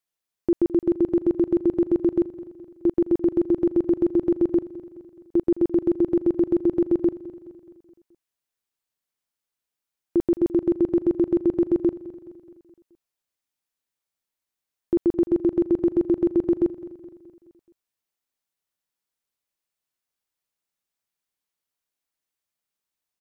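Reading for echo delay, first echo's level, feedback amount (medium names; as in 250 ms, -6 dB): 212 ms, -17.0 dB, 54%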